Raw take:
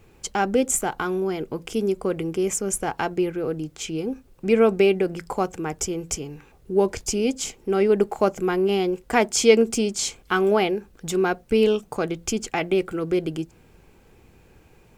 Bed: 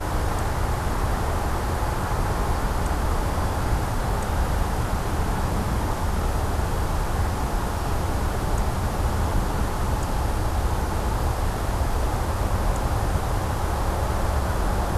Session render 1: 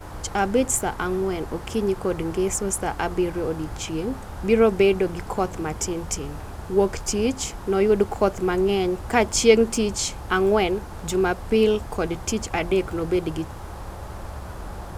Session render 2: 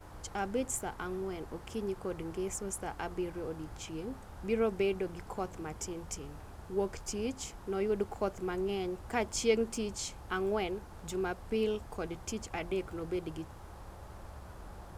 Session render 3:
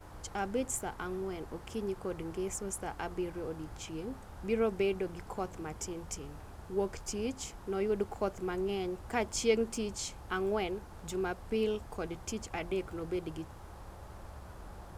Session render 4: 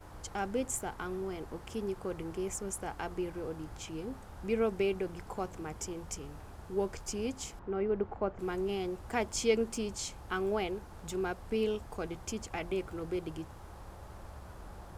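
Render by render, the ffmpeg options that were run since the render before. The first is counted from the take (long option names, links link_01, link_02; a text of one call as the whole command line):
ffmpeg -i in.wav -i bed.wav -filter_complex "[1:a]volume=-11.5dB[link_01];[0:a][link_01]amix=inputs=2:normalize=0" out.wav
ffmpeg -i in.wav -af "volume=-13dB" out.wav
ffmpeg -i in.wav -af anull out.wav
ffmpeg -i in.wav -filter_complex "[0:a]asettb=1/sr,asplit=3[link_01][link_02][link_03];[link_01]atrim=end=7.594[link_04];[link_02]atrim=start=7.59:end=8.39,asetpts=PTS-STARTPTS,afade=type=in:duration=0.004:curve=qsin,afade=type=out:start_time=0.796:duration=0.004:curve=qsin,lowpass=1900[link_05];[link_03]atrim=start=8.386[link_06];[link_04][link_05]acrossfade=duration=0.004:curve1=hsin:curve2=qsin[link_07];[link_07][link_06]acrossfade=duration=0.004:curve1=qsin:curve2=hsin" out.wav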